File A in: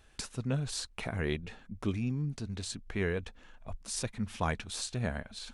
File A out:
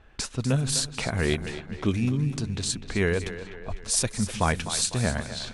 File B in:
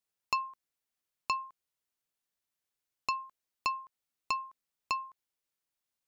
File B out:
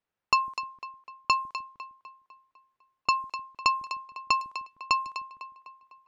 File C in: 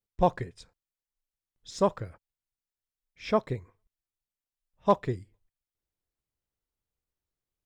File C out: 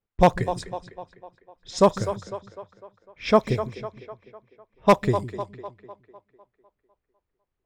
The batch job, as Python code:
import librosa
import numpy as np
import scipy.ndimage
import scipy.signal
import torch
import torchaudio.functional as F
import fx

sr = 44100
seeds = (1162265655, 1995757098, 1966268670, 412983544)

y = fx.high_shelf(x, sr, hz=6900.0, db=10.0)
y = fx.echo_split(y, sr, split_hz=310.0, low_ms=153, high_ms=251, feedback_pct=52, wet_db=-11.5)
y = 10.0 ** (-13.5 / 20.0) * (np.abs((y / 10.0 ** (-13.5 / 20.0) + 3.0) % 4.0 - 2.0) - 1.0)
y = fx.env_lowpass(y, sr, base_hz=1900.0, full_db=-30.0)
y = F.gain(torch.from_numpy(y), 7.5).numpy()